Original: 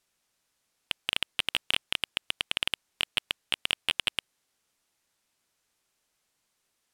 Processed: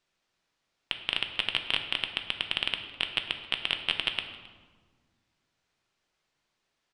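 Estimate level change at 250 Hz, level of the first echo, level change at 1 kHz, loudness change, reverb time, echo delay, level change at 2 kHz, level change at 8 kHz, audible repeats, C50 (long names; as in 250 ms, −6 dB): +2.0 dB, −21.5 dB, +1.0 dB, 0.0 dB, 1.5 s, 267 ms, +0.5 dB, −12.5 dB, 1, 8.0 dB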